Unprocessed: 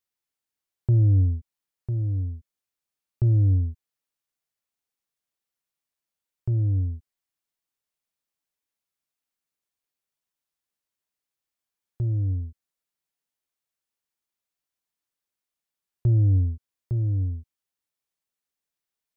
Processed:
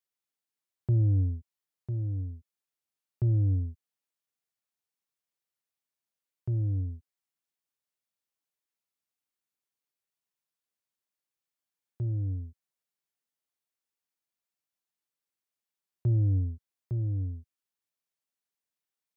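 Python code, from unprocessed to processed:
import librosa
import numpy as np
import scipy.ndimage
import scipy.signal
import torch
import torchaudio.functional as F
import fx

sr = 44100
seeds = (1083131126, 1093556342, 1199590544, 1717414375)

y = scipy.signal.sosfilt(scipy.signal.butter(2, 88.0, 'highpass', fs=sr, output='sos'), x)
y = F.gain(torch.from_numpy(y), -4.0).numpy()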